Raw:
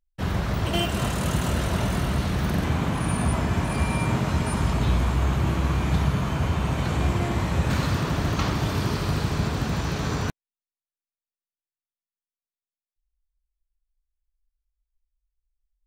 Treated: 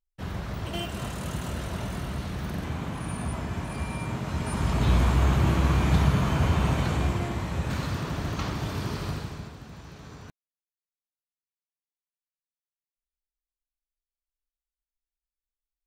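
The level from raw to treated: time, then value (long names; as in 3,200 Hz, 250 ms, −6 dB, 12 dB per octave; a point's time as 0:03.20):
0:04.20 −8 dB
0:04.97 +1 dB
0:06.67 +1 dB
0:07.40 −6 dB
0:09.08 −6 dB
0:09.58 −18 dB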